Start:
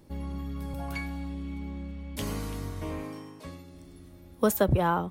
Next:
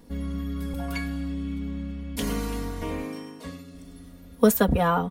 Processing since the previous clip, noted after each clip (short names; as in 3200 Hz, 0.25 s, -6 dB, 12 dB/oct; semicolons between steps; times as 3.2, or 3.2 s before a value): comb 4.2 ms, depth 88%; gain +2.5 dB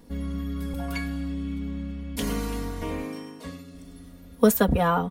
nothing audible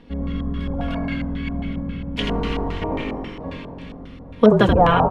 regenerating reverse delay 0.407 s, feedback 56%, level -12 dB; frequency-shifting echo 81 ms, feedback 58%, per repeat -43 Hz, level -6 dB; LFO low-pass square 3.7 Hz 820–2900 Hz; gain +4 dB